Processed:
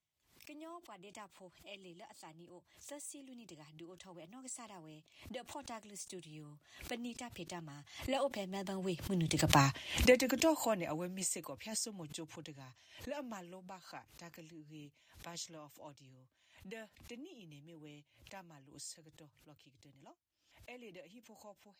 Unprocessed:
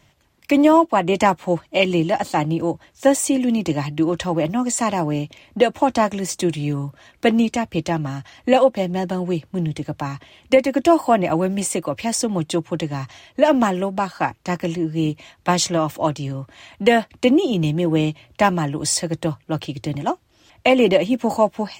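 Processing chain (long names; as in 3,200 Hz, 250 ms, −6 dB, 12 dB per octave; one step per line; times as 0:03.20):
source passing by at 0:09.61, 16 m/s, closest 2.2 metres
high-shelf EQ 2,600 Hz +12 dB
background raised ahead of every attack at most 110 dB per second
level −2 dB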